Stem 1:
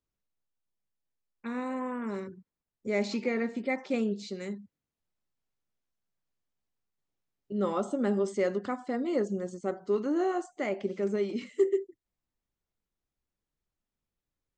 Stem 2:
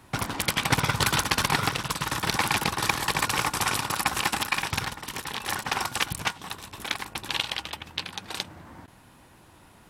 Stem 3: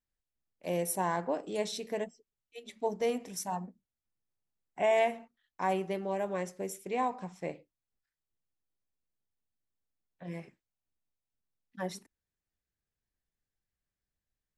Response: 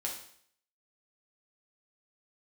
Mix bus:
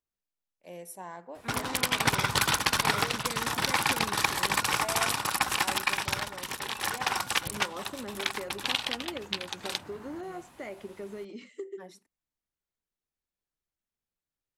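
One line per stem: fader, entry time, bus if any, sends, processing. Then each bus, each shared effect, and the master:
-4.0 dB, 0.00 s, no send, compression, threshold -30 dBFS, peak gain reduction 10.5 dB
-1.0 dB, 1.35 s, no send, none
-10.0 dB, 0.00 s, no send, none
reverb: none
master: bass shelf 330 Hz -5.5 dB

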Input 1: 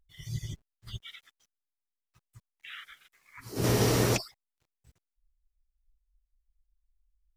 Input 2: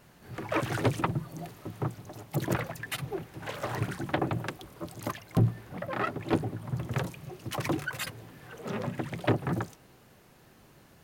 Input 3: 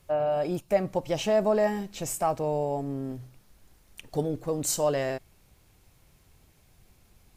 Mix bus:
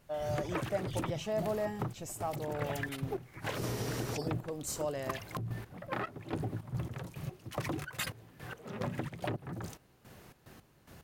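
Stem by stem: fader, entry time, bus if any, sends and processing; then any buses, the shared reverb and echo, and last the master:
-4.5 dB, 0.00 s, bus A, no send, none
+3.0 dB, 0.00 s, bus A, no send, peaking EQ 66 Hz +4.5 dB 1.5 oct; peak limiter -23 dBFS, peak gain reduction 11 dB; trance gate ".xx.x..x." 109 bpm -12 dB
-10.5 dB, 0.00 s, no bus, no send, none
bus A: 0.0 dB, compression 12:1, threshold -32 dBFS, peak gain reduction 10.5 dB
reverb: none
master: none

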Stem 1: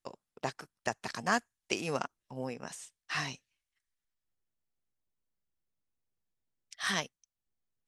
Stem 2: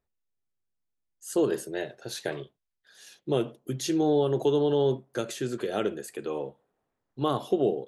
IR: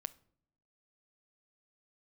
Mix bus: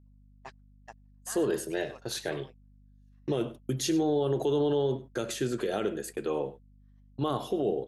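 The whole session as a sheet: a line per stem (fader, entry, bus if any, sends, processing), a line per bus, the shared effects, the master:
-14.5 dB, 0.00 s, send -15 dB, echo send -13 dB, overdrive pedal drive 15 dB, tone 2.1 kHz, clips at -13 dBFS; auto duck -9 dB, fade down 0.40 s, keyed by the second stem
+1.0 dB, 0.00 s, send -19 dB, echo send -17.5 dB, peak limiter -21.5 dBFS, peak gain reduction 8.5 dB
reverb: on, pre-delay 7 ms
echo: delay 99 ms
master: gate -42 dBFS, range -42 dB; hum 50 Hz, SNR 26 dB

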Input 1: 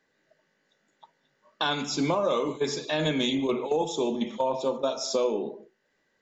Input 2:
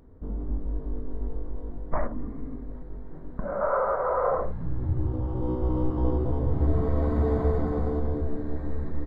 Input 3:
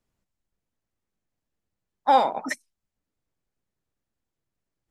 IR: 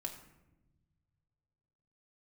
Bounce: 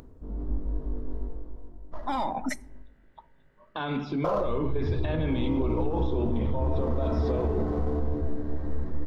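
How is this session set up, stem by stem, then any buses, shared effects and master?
+1.5 dB, 2.15 s, bus A, send -10.5 dB, peak limiter -25.5 dBFS, peak gain reduction 9.5 dB; Gaussian low-pass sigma 2.9 samples
-2.0 dB, 0.00 s, muted 2.82–4.24 s, no bus, send -14 dB, median filter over 15 samples; upward compressor, threshold -41 dBFS; auto duck -21 dB, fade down 0.90 s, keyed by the third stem
+2.5 dB, 0.00 s, bus A, send -19 dB, tone controls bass +8 dB, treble +1 dB; Shepard-style flanger falling 0.92 Hz
bus A: 0.0 dB, bass shelf 200 Hz +11.5 dB; peak limiter -22.5 dBFS, peak gain reduction 10.5 dB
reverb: on, RT60 1.0 s, pre-delay 3 ms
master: peak limiter -18 dBFS, peak gain reduction 7 dB

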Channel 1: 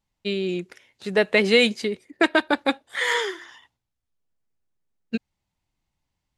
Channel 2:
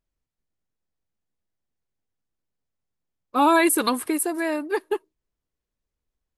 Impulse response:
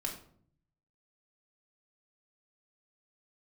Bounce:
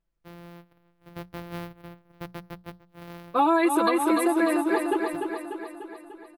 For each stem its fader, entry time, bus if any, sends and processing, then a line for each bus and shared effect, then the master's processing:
-19.0 dB, 0.00 s, no send, echo send -23 dB, sorted samples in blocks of 256 samples; peaking EQ 7.3 kHz -14.5 dB 1 oct; hum notches 60/120/180 Hz
+1.0 dB, 0.00 s, no send, echo send -6.5 dB, treble shelf 4.4 kHz -12 dB; comb 5.9 ms, depth 76%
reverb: none
echo: feedback delay 296 ms, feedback 58%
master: compression 6:1, threshold -18 dBFS, peak gain reduction 8.5 dB

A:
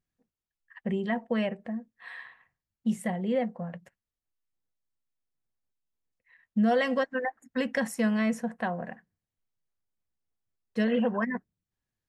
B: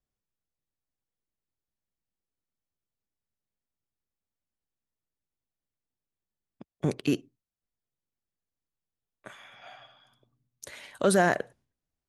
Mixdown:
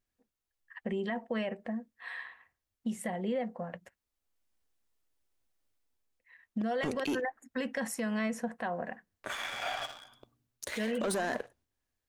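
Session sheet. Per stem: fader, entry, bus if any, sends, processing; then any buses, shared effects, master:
+1.5 dB, 0.00 s, no send, compression, threshold -27 dBFS, peak gain reduction 7 dB
-4.5 dB, 0.00 s, no send, level rider gain up to 15 dB; waveshaping leveller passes 2; auto duck -8 dB, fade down 0.50 s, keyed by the first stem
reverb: none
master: peaking EQ 150 Hz -12 dB 0.68 oct; peak limiter -25 dBFS, peak gain reduction 13.5 dB

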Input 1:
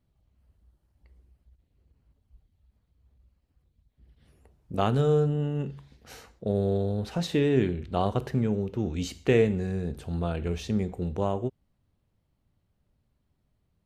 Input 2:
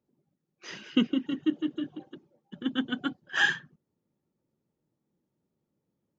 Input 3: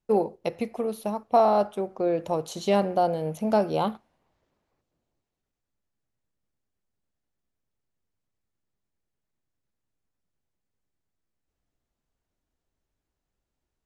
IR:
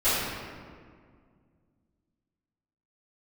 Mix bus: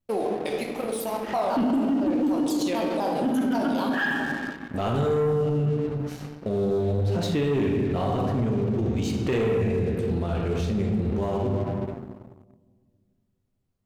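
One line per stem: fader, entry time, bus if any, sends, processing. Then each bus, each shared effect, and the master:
+1.5 dB, 0.00 s, send -14.5 dB, upward expansion 1.5:1, over -36 dBFS
+1.0 dB, 0.60 s, send -17 dB, Bessel low-pass 1.5 kHz, order 2; peaking EQ 250 Hz +5 dB 1 oct
-8.0 dB, 0.00 s, send -14 dB, tilt EQ +2.5 dB/octave; vibrato with a chosen wave saw down 4 Hz, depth 250 cents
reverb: on, RT60 2.0 s, pre-delay 3 ms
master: waveshaping leveller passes 2; peak limiter -18.5 dBFS, peak gain reduction 12 dB

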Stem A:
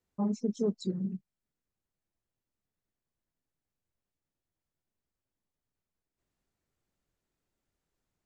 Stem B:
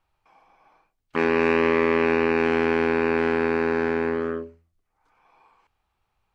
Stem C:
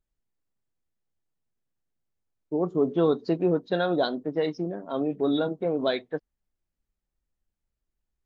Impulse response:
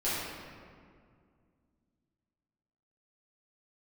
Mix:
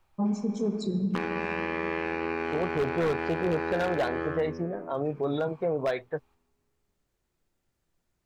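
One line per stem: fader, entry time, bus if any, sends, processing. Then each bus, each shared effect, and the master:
+1.5 dB, 0.00 s, send -13.5 dB, gain riding 0.5 s
+1.0 dB, 0.00 s, send -14.5 dB, compression 16:1, threshold -26 dBFS, peak gain reduction 11 dB
-1.5 dB, 0.00 s, no send, graphic EQ 125/250/500/1000/2000/4000 Hz +11/-10/+4/+4/+4/-9 dB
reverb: on, RT60 2.1 s, pre-delay 5 ms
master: wavefolder -16.5 dBFS; peak limiter -20 dBFS, peak gain reduction 3.5 dB

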